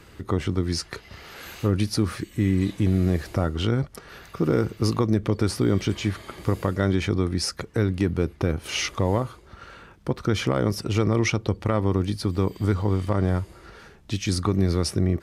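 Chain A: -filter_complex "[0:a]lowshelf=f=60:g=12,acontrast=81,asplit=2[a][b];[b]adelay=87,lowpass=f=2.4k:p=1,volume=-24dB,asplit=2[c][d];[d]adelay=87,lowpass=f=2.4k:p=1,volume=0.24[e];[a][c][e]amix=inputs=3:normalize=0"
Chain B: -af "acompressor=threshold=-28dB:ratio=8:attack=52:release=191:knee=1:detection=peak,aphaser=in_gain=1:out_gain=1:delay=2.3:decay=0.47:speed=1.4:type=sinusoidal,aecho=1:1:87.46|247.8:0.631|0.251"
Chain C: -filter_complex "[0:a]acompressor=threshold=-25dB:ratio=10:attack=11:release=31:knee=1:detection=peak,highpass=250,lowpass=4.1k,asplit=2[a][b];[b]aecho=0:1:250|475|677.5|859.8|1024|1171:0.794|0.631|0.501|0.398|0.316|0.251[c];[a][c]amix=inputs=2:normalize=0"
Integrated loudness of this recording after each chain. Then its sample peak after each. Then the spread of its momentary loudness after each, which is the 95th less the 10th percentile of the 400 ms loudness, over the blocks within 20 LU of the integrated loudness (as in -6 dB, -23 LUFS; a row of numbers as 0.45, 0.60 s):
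-17.0, -26.0, -28.5 LUFS; -4.0, -6.5, -10.5 dBFS; 10, 9, 5 LU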